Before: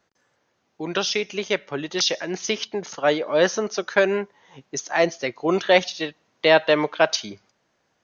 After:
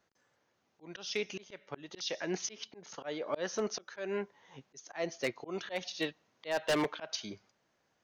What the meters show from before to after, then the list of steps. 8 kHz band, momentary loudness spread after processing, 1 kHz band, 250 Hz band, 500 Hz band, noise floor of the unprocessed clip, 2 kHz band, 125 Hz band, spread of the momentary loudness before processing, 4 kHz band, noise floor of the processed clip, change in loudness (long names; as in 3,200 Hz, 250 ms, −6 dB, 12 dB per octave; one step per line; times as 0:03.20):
can't be measured, 14 LU, −16.5 dB, −12.5 dB, −16.0 dB, −71 dBFS, −16.0 dB, −13.0 dB, 12 LU, −14.5 dB, −77 dBFS, −15.0 dB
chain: volume swells 326 ms
wave folding −16 dBFS
level −6.5 dB